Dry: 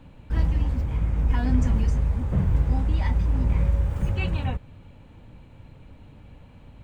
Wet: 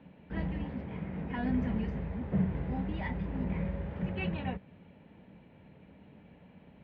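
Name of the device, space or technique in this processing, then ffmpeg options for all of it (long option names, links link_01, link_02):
guitar cabinet: -filter_complex "[0:a]asettb=1/sr,asplit=3[link_01][link_02][link_03];[link_01]atrim=end=0.644[link_04];[link_02]atrim=start=0.64:end=1.38,asetpts=PTS-STARTPTS,afade=type=in:duration=0.004:curve=qsin,afade=type=out:start_time=0.736:duration=0.004:curve=qsin,highpass=90[link_05];[link_03]atrim=start=1.376[link_06];[link_04][link_05]acrossfade=duration=0.004:curve1=hsin:curve2=qsin[link_07];[link_07][link_06]acrossfade=duration=0.004:curve1=qsin:curve2=hsin,highpass=110,equalizer=frequency=110:width_type=q:width=4:gain=-10,equalizer=frequency=190:width_type=q:width=4:gain=9,equalizer=frequency=410:width_type=q:width=4:gain=5,equalizer=frequency=660:width_type=q:width=4:gain=4,equalizer=frequency=1200:width_type=q:width=4:gain=-4,equalizer=frequency=1900:width_type=q:width=4:gain=5,lowpass=frequency=3400:width=0.5412,lowpass=frequency=3400:width=1.3066,volume=-6dB"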